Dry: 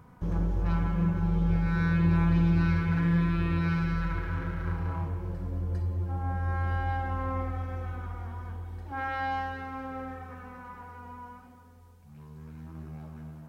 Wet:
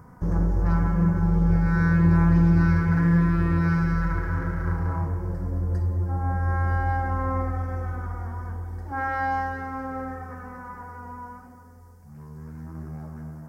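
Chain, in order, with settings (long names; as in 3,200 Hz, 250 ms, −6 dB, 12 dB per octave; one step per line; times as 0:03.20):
flat-topped bell 3,100 Hz −13 dB 1 octave
level +5.5 dB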